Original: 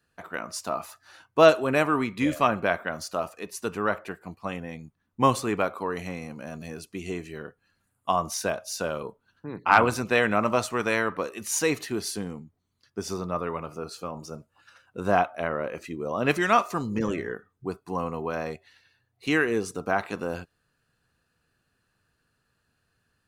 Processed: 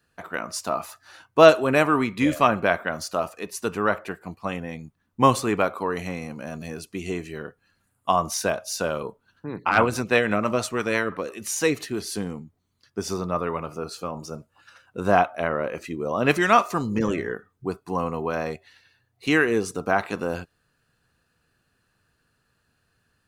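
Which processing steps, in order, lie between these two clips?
0:09.69–0:12.12: rotating-speaker cabinet horn 6 Hz
level +3.5 dB

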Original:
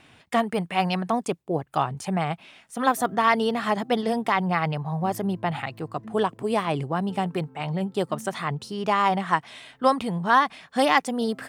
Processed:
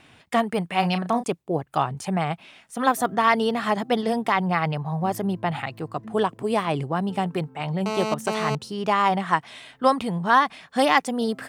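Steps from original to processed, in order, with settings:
0:00.79–0:01.24: double-tracking delay 34 ms −10 dB
0:07.86–0:08.55: phone interference −28 dBFS
level +1 dB

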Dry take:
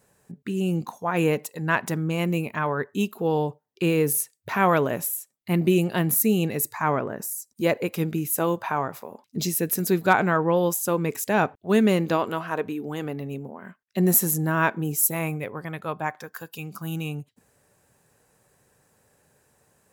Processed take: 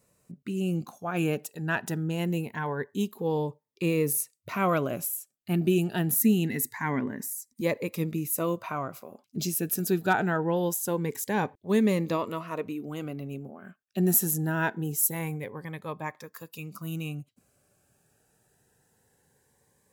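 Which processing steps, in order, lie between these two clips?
0:06.20–0:07.61: thirty-one-band graphic EQ 250 Hz +11 dB, 500 Hz −9 dB, 800 Hz −6 dB, 2,000 Hz +10 dB
phaser whose notches keep moving one way rising 0.24 Hz
level −3.5 dB

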